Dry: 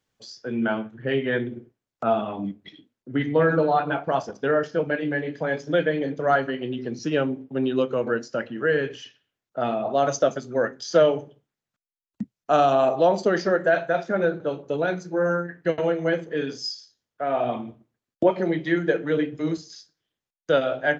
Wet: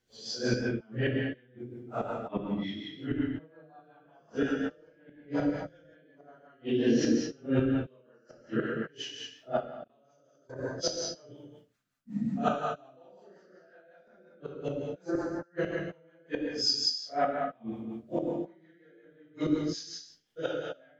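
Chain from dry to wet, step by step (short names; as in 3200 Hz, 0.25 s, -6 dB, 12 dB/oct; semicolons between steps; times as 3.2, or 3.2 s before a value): phase scrambler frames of 0.2 s; flipped gate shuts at -20 dBFS, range -41 dB; non-linear reverb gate 0.28 s flat, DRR -2.5 dB; rotary speaker horn 5.5 Hz; 9.6–10.59 level quantiser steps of 23 dB; thin delay 76 ms, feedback 37%, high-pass 3100 Hz, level -22 dB; gain +4 dB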